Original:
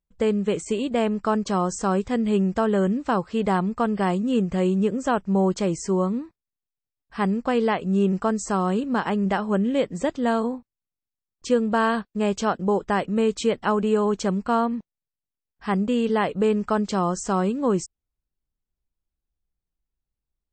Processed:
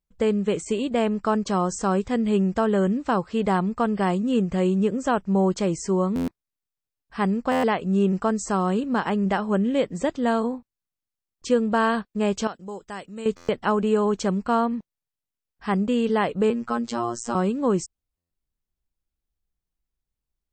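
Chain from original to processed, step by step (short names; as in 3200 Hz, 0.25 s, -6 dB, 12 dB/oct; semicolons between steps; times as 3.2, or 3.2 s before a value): 12.47–13.26 pre-emphasis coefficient 0.8; 16.5–17.35 robotiser 118 Hz; stuck buffer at 6.15/7.51/13.36/18.17, samples 512, times 10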